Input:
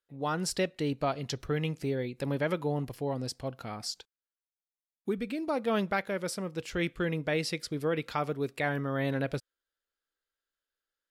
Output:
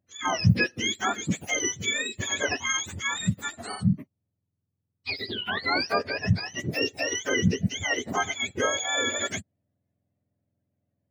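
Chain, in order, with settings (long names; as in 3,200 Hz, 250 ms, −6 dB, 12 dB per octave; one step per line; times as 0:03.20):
frequency axis turned over on the octave scale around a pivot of 970 Hz
level +6.5 dB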